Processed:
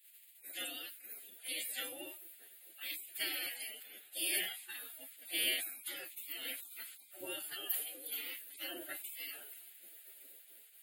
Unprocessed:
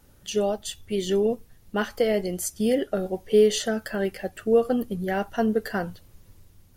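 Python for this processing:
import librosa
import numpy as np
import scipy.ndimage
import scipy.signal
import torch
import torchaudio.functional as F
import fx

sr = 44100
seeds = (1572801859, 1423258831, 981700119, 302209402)

y = fx.spec_gate(x, sr, threshold_db=-30, keep='weak')
y = fx.stretch_vocoder(y, sr, factor=1.6)
y = scipy.signal.sosfilt(scipy.signal.butter(4, 270.0, 'highpass', fs=sr, output='sos'), y)
y = fx.high_shelf(y, sr, hz=5500.0, db=10.0)
y = fx.fixed_phaser(y, sr, hz=2500.0, stages=4)
y = fx.buffer_crackle(y, sr, first_s=0.47, period_s=0.99, block=512, kind='repeat')
y = fx.sustainer(y, sr, db_per_s=75.0)
y = F.gain(torch.from_numpy(y), 5.0).numpy()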